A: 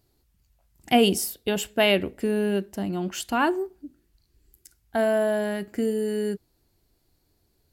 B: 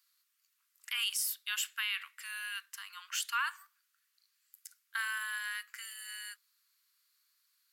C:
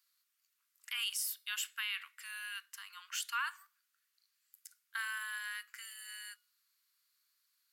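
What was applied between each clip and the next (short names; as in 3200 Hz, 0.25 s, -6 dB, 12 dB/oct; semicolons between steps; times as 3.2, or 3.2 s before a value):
steep high-pass 1100 Hz 72 dB/oct; limiter -23.5 dBFS, peak gain reduction 12 dB
resonator 720 Hz, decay 0.4 s, mix 40%; gain +1 dB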